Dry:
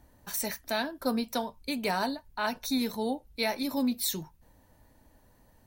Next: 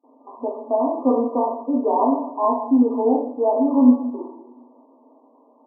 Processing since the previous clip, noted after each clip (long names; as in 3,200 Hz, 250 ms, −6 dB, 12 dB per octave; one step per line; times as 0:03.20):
coupled-rooms reverb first 0.72 s, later 1.9 s, DRR −3.5 dB
noise gate with hold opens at −48 dBFS
brick-wall band-pass 230–1,200 Hz
level +7.5 dB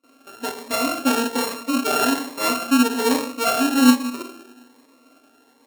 samples sorted by size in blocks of 32 samples
phaser whose notches keep moving one way rising 1.2 Hz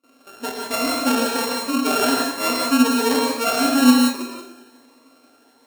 reverb whose tail is shaped and stops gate 200 ms rising, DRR 0 dB
level −1 dB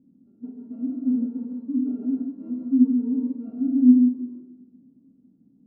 background noise brown −42 dBFS
flat-topped band-pass 230 Hz, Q 2.6